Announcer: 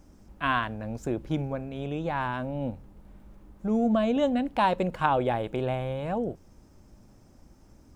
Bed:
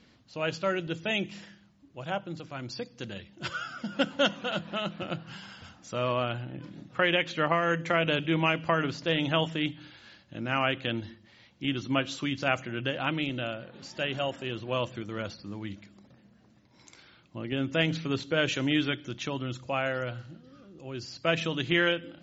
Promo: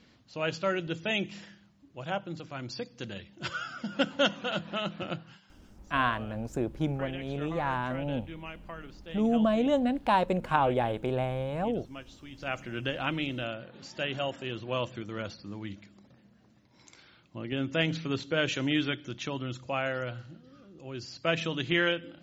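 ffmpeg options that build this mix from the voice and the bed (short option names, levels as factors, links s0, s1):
-filter_complex "[0:a]adelay=5500,volume=0.891[s0];[1:a]volume=5.62,afade=t=out:st=5.1:d=0.3:silence=0.149624,afade=t=in:st=12.3:d=0.47:silence=0.16788[s1];[s0][s1]amix=inputs=2:normalize=0"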